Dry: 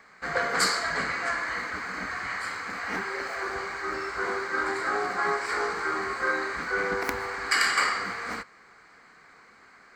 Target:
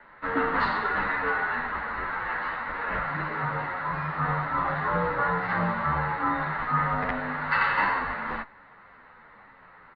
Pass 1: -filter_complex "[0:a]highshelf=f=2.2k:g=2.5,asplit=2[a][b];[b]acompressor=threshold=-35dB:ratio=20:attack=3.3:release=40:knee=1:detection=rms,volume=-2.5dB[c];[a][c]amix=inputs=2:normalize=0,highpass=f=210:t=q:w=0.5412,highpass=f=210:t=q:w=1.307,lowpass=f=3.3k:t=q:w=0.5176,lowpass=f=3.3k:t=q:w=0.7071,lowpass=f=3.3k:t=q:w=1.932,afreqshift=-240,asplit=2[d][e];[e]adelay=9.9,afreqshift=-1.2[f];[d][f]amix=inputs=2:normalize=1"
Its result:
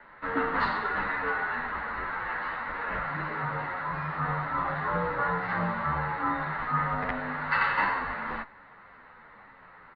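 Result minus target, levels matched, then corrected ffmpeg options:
compressor: peak gain reduction +10.5 dB
-filter_complex "[0:a]highshelf=f=2.2k:g=2.5,asplit=2[a][b];[b]acompressor=threshold=-24dB:ratio=20:attack=3.3:release=40:knee=1:detection=rms,volume=-2.5dB[c];[a][c]amix=inputs=2:normalize=0,highpass=f=210:t=q:w=0.5412,highpass=f=210:t=q:w=1.307,lowpass=f=3.3k:t=q:w=0.5176,lowpass=f=3.3k:t=q:w=0.7071,lowpass=f=3.3k:t=q:w=1.932,afreqshift=-240,asplit=2[d][e];[e]adelay=9.9,afreqshift=-1.2[f];[d][f]amix=inputs=2:normalize=1"

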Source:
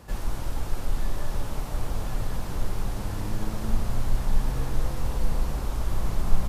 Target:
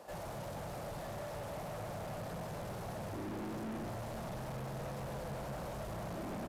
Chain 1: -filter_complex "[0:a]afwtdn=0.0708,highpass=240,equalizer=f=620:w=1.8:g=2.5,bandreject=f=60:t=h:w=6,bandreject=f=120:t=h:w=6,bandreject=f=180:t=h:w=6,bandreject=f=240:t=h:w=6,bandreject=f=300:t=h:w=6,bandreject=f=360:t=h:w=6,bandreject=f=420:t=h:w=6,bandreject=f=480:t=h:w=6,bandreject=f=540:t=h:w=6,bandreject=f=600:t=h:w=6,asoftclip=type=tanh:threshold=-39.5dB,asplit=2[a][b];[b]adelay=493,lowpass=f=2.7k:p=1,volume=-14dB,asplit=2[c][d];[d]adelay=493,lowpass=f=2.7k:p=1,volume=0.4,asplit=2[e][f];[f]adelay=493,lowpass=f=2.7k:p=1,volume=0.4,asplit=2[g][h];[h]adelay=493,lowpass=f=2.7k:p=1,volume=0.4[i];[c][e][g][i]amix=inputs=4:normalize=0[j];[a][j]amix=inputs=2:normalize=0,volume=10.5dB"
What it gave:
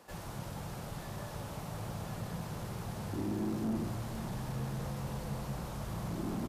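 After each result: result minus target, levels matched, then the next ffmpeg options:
soft clip: distortion -8 dB; 500 Hz band -5.5 dB
-filter_complex "[0:a]afwtdn=0.0708,highpass=240,equalizer=f=620:w=1.8:g=2.5,bandreject=f=60:t=h:w=6,bandreject=f=120:t=h:w=6,bandreject=f=180:t=h:w=6,bandreject=f=240:t=h:w=6,bandreject=f=300:t=h:w=6,bandreject=f=360:t=h:w=6,bandreject=f=420:t=h:w=6,bandreject=f=480:t=h:w=6,bandreject=f=540:t=h:w=6,bandreject=f=600:t=h:w=6,asoftclip=type=tanh:threshold=-50dB,asplit=2[a][b];[b]adelay=493,lowpass=f=2.7k:p=1,volume=-14dB,asplit=2[c][d];[d]adelay=493,lowpass=f=2.7k:p=1,volume=0.4,asplit=2[e][f];[f]adelay=493,lowpass=f=2.7k:p=1,volume=0.4,asplit=2[g][h];[h]adelay=493,lowpass=f=2.7k:p=1,volume=0.4[i];[c][e][g][i]amix=inputs=4:normalize=0[j];[a][j]amix=inputs=2:normalize=0,volume=10.5dB"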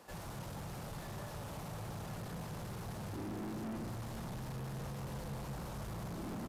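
500 Hz band -4.5 dB
-filter_complex "[0:a]afwtdn=0.0708,highpass=240,equalizer=f=620:w=1.8:g=14,bandreject=f=60:t=h:w=6,bandreject=f=120:t=h:w=6,bandreject=f=180:t=h:w=6,bandreject=f=240:t=h:w=6,bandreject=f=300:t=h:w=6,bandreject=f=360:t=h:w=6,bandreject=f=420:t=h:w=6,bandreject=f=480:t=h:w=6,bandreject=f=540:t=h:w=6,bandreject=f=600:t=h:w=6,asoftclip=type=tanh:threshold=-50dB,asplit=2[a][b];[b]adelay=493,lowpass=f=2.7k:p=1,volume=-14dB,asplit=2[c][d];[d]adelay=493,lowpass=f=2.7k:p=1,volume=0.4,asplit=2[e][f];[f]adelay=493,lowpass=f=2.7k:p=1,volume=0.4,asplit=2[g][h];[h]adelay=493,lowpass=f=2.7k:p=1,volume=0.4[i];[c][e][g][i]amix=inputs=4:normalize=0[j];[a][j]amix=inputs=2:normalize=0,volume=10.5dB"

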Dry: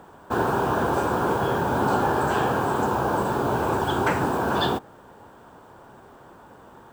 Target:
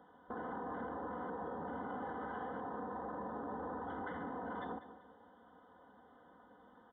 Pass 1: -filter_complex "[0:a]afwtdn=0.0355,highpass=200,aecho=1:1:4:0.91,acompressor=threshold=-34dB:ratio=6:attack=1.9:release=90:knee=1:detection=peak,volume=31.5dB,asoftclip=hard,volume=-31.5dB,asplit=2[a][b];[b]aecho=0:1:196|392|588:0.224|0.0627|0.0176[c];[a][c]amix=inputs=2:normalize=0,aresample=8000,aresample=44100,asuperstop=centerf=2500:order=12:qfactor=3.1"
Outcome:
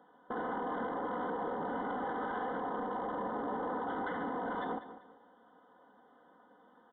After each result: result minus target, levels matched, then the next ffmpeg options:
compressor: peak gain reduction -7 dB; 125 Hz band -4.5 dB
-filter_complex "[0:a]afwtdn=0.0355,highpass=200,aecho=1:1:4:0.91,acompressor=threshold=-42dB:ratio=6:attack=1.9:release=90:knee=1:detection=peak,volume=31.5dB,asoftclip=hard,volume=-31.5dB,asplit=2[a][b];[b]aecho=0:1:196|392|588:0.224|0.0627|0.0176[c];[a][c]amix=inputs=2:normalize=0,aresample=8000,aresample=44100,asuperstop=centerf=2500:order=12:qfactor=3.1"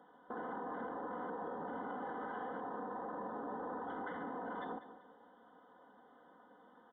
125 Hz band -4.5 dB
-filter_complex "[0:a]afwtdn=0.0355,highpass=79,aecho=1:1:4:0.91,acompressor=threshold=-42dB:ratio=6:attack=1.9:release=90:knee=1:detection=peak,volume=31.5dB,asoftclip=hard,volume=-31.5dB,asplit=2[a][b];[b]aecho=0:1:196|392|588:0.224|0.0627|0.0176[c];[a][c]amix=inputs=2:normalize=0,aresample=8000,aresample=44100,asuperstop=centerf=2500:order=12:qfactor=3.1"

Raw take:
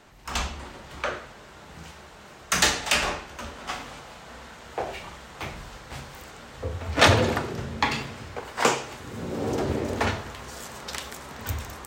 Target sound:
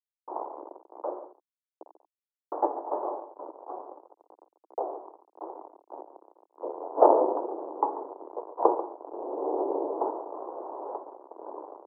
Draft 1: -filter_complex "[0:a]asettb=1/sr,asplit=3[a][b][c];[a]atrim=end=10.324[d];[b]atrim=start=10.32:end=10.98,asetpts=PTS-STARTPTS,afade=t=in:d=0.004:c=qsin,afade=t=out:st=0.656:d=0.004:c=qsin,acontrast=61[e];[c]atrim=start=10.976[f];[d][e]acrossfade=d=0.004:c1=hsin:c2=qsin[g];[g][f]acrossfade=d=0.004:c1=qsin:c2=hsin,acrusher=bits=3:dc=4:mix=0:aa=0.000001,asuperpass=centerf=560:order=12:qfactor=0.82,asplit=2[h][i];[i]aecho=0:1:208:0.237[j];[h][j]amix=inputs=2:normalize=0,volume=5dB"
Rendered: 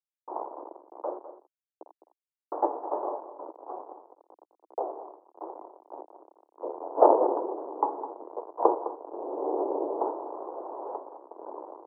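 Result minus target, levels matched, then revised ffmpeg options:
echo 68 ms late
-filter_complex "[0:a]asettb=1/sr,asplit=3[a][b][c];[a]atrim=end=10.324[d];[b]atrim=start=10.32:end=10.98,asetpts=PTS-STARTPTS,afade=t=in:d=0.004:c=qsin,afade=t=out:st=0.656:d=0.004:c=qsin,acontrast=61[e];[c]atrim=start=10.976[f];[d][e]acrossfade=d=0.004:c1=hsin:c2=qsin[g];[g][f]acrossfade=d=0.004:c1=qsin:c2=hsin,acrusher=bits=3:dc=4:mix=0:aa=0.000001,asuperpass=centerf=560:order=12:qfactor=0.82,asplit=2[h][i];[i]aecho=0:1:140:0.237[j];[h][j]amix=inputs=2:normalize=0,volume=5dB"

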